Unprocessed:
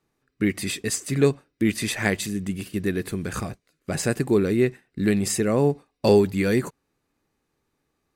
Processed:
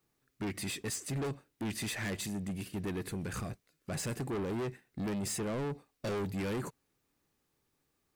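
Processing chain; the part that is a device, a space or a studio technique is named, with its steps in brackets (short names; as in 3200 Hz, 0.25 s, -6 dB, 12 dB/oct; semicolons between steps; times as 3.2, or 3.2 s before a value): open-reel tape (soft clip -27 dBFS, distortion -5 dB; bell 120 Hz +2.5 dB; white noise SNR 45 dB); gain -6 dB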